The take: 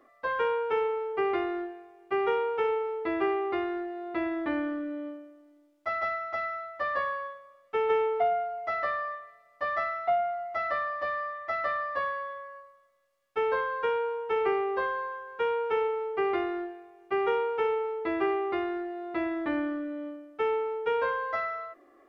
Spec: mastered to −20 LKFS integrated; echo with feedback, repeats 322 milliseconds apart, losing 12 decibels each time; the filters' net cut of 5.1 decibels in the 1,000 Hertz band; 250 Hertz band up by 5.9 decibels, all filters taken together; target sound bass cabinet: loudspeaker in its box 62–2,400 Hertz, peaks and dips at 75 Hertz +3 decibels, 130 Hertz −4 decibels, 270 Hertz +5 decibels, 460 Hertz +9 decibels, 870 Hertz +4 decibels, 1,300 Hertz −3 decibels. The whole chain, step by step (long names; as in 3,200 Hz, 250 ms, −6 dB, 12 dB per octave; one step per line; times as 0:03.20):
loudspeaker in its box 62–2,400 Hz, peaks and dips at 75 Hz +3 dB, 130 Hz −4 dB, 270 Hz +5 dB, 460 Hz +9 dB, 870 Hz +4 dB, 1,300 Hz −3 dB
parametric band 250 Hz +5 dB
parametric band 1,000 Hz −9 dB
repeating echo 322 ms, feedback 25%, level −12 dB
level +4.5 dB